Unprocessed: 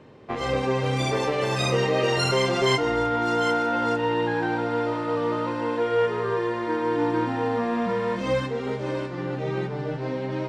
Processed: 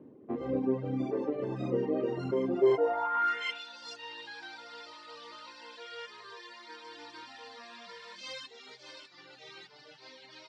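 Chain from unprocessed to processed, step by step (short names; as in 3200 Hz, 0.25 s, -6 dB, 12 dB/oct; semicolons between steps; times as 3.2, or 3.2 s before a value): band-pass sweep 280 Hz -> 4600 Hz, 2.56–3.77; reverb removal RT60 1.1 s; gain +3 dB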